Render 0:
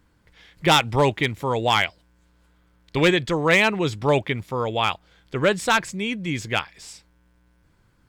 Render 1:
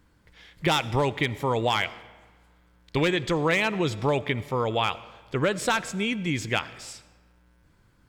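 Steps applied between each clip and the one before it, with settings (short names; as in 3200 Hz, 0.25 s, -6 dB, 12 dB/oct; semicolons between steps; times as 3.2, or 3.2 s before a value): compressor, threshold -20 dBFS, peak gain reduction 7.5 dB; on a send at -17 dB: reverb RT60 1.4 s, pre-delay 41 ms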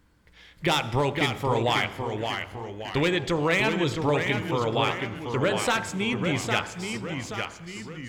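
de-hum 52.57 Hz, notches 32; echoes that change speed 0.469 s, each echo -1 st, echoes 3, each echo -6 dB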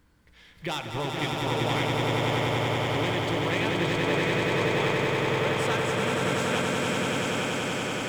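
G.711 law mismatch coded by mu; swelling echo 95 ms, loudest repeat 8, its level -4 dB; gain -8.5 dB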